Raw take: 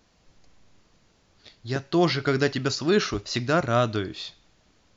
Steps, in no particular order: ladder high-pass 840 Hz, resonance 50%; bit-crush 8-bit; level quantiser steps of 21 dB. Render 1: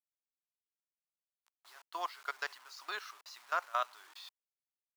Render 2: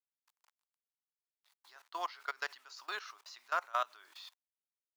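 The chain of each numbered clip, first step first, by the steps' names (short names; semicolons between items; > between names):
level quantiser > bit-crush > ladder high-pass; bit-crush > level quantiser > ladder high-pass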